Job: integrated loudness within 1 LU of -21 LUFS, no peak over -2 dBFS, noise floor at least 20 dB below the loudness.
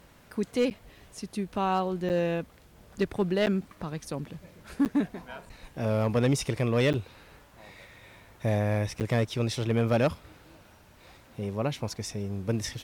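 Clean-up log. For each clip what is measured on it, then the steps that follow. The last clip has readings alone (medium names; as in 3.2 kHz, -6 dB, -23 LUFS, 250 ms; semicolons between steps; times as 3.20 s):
clipped samples 0.5%; clipping level -18.0 dBFS; dropouts 6; longest dropout 9.0 ms; loudness -29.0 LUFS; peak level -18.0 dBFS; loudness target -21.0 LUFS
-> clip repair -18 dBFS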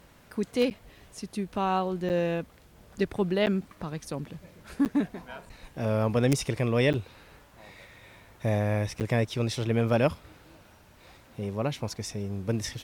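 clipped samples 0.0%; dropouts 6; longest dropout 9.0 ms
-> interpolate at 0.70/2.09/3.46/4.85/6.93/9.00 s, 9 ms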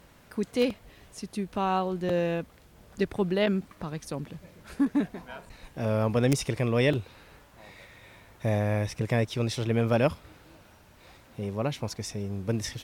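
dropouts 0; loudness -29.0 LUFS; peak level -9.0 dBFS; loudness target -21.0 LUFS
-> trim +8 dB; peak limiter -2 dBFS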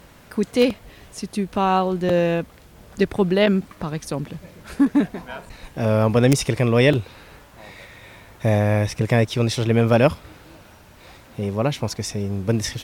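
loudness -21.0 LUFS; peak level -2.0 dBFS; noise floor -48 dBFS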